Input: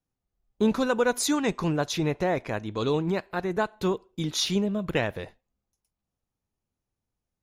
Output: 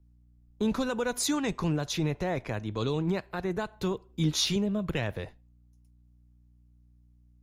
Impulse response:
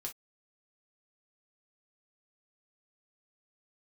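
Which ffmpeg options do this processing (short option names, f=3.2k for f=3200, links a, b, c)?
-filter_complex "[0:a]aeval=exprs='val(0)+0.000891*(sin(2*PI*60*n/s)+sin(2*PI*2*60*n/s)/2+sin(2*PI*3*60*n/s)/3+sin(2*PI*4*60*n/s)/4+sin(2*PI*5*60*n/s)/5)':c=same,acrossover=split=140|2600[a][b][c];[a]acontrast=36[d];[b]alimiter=limit=-20.5dB:level=0:latency=1:release=65[e];[d][e][c]amix=inputs=3:normalize=0,asettb=1/sr,asplit=3[f][g][h];[f]atrim=end=4.084[i];[g]atrim=start=4.08:end=4.56,asetpts=PTS-STARTPTS,afade=t=in:d=0.004:c=qsin,afade=t=out:st=0.476:d=0.004:c=qsin,asplit=2[j][k];[k]adelay=13,volume=-3.5dB[l];[j][l]amix=inputs=2:normalize=0,atrim=end_sample=21168[m];[h]atrim=start=4.556[n];[i][m]acrossfade=d=0.004:c1=hsin:c2=qsin[o];[o][n]acrossfade=d=0.004:c1=qsin:c2=hsin,volume=-2dB"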